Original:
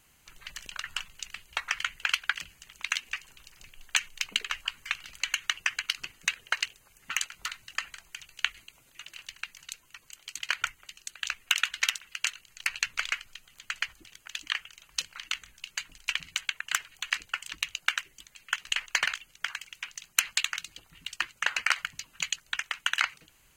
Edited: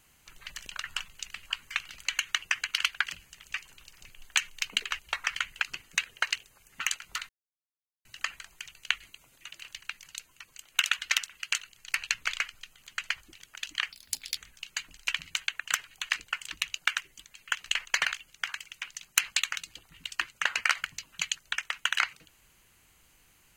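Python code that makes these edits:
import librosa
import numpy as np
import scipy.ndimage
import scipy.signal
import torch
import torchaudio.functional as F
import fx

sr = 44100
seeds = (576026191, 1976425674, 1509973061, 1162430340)

y = fx.edit(x, sr, fx.swap(start_s=1.43, length_s=0.64, other_s=4.58, other_length_s=1.35),
    fx.cut(start_s=2.8, length_s=0.3),
    fx.insert_silence(at_s=7.59, length_s=0.76),
    fx.cut(start_s=10.26, length_s=1.18),
    fx.speed_span(start_s=14.64, length_s=0.74, speed=1.64), tone=tone)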